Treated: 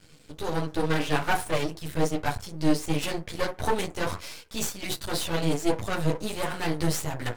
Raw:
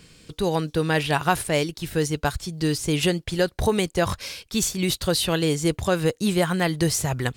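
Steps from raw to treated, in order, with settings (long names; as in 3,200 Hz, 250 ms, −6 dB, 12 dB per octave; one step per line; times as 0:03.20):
feedback delay network reverb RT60 0.3 s, low-frequency decay 0.75×, high-frequency decay 0.4×, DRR 1.5 dB
multi-voice chorus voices 2, 1.3 Hz, delay 11 ms, depth 3 ms
half-wave rectification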